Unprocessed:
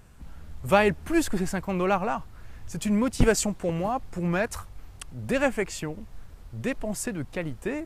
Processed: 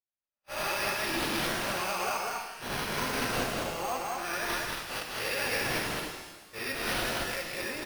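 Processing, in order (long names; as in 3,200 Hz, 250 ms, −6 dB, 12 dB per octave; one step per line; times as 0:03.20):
peak hold with a rise ahead of every peak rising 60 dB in 0.76 s
spectral tilt +4.5 dB per octave
brickwall limiter −15.5 dBFS, peak gain reduction 16.5 dB
flanger 1.1 Hz, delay 1 ms, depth 3 ms, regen +8%
noise gate −37 dBFS, range −50 dB
loudspeakers that aren't time-aligned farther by 69 metres −2 dB, 91 metres −11 dB
bad sample-rate conversion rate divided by 6×, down none, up hold
reverb with rising layers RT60 1.2 s, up +12 semitones, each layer −8 dB, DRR 3 dB
level −4.5 dB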